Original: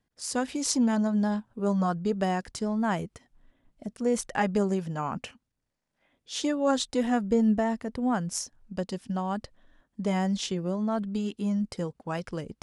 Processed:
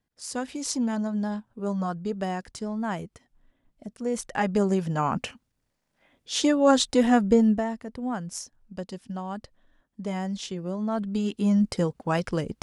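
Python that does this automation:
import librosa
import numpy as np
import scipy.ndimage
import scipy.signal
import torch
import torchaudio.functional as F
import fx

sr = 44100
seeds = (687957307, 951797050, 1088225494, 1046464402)

y = fx.gain(x, sr, db=fx.line((4.1, -2.5), (4.98, 6.0), (7.3, 6.0), (7.74, -3.5), (10.49, -3.5), (11.61, 7.0)))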